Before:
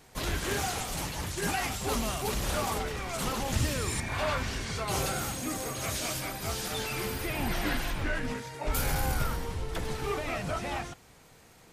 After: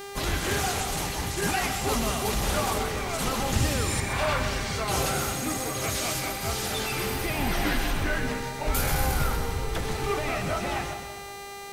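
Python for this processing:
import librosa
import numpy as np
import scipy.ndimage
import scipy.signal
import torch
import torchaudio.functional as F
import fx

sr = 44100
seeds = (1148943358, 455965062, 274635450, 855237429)

y = fx.dmg_buzz(x, sr, base_hz=400.0, harmonics=39, level_db=-43.0, tilt_db=-5, odd_only=False)
y = fx.echo_split(y, sr, split_hz=840.0, low_ms=188, high_ms=128, feedback_pct=52, wet_db=-9.0)
y = y * librosa.db_to_amplitude(3.5)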